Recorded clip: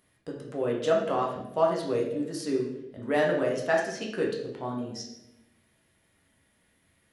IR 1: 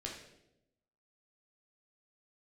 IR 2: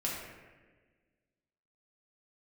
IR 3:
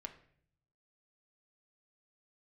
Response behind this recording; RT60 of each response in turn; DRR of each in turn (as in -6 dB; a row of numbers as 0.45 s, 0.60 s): 1; 0.90 s, 1.4 s, 0.60 s; -2.0 dB, -5.0 dB, 4.0 dB